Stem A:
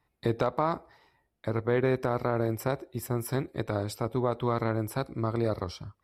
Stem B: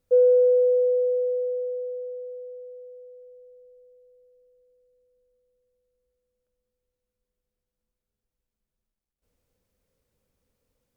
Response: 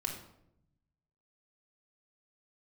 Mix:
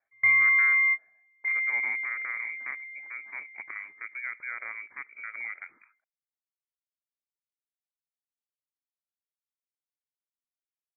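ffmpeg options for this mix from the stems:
-filter_complex "[0:a]volume=0.422,asplit=2[s0][s1];[1:a]highpass=460,aeval=exprs='0.188*(cos(1*acos(clip(val(0)/0.188,-1,1)))-cos(1*PI/2))+0.0188*(cos(5*acos(clip(val(0)/0.188,-1,1)))-cos(5*PI/2))':c=same,volume=0.944[s2];[s1]apad=whole_len=483465[s3];[s2][s3]sidechaingate=range=0.01:threshold=0.00126:ratio=16:detection=peak[s4];[s0][s4]amix=inputs=2:normalize=0,highpass=f=250:w=0.5412,highpass=f=250:w=1.3066,lowpass=f=2200:t=q:w=0.5098,lowpass=f=2200:t=q:w=0.6013,lowpass=f=2200:t=q:w=0.9,lowpass=f=2200:t=q:w=2.563,afreqshift=-2600"

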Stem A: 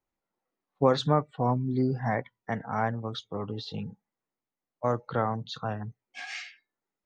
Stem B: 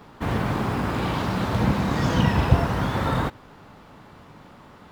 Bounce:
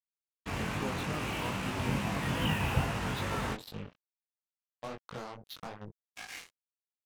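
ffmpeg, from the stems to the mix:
-filter_complex "[0:a]acompressor=threshold=0.0141:ratio=4,volume=1[s0];[1:a]lowpass=f=2700:t=q:w=3.7,adelay=250,volume=0.376[s1];[s0][s1]amix=inputs=2:normalize=0,acrusher=bits=5:mix=0:aa=0.5,flanger=delay=19:depth=3.9:speed=2.4"

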